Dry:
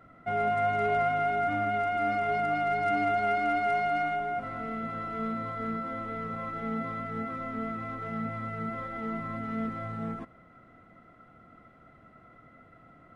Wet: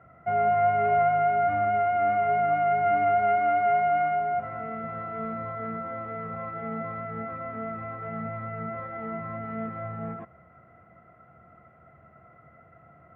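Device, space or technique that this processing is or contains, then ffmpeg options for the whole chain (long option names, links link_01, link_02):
bass cabinet: -af "highpass=71,equalizer=frequency=78:width_type=q:width=4:gain=10,equalizer=frequency=140:width_type=q:width=4:gain=5,equalizer=frequency=270:width_type=q:width=4:gain=-10,equalizer=frequency=690:width_type=q:width=4:gain=6,lowpass=frequency=2400:width=0.5412,lowpass=frequency=2400:width=1.3066"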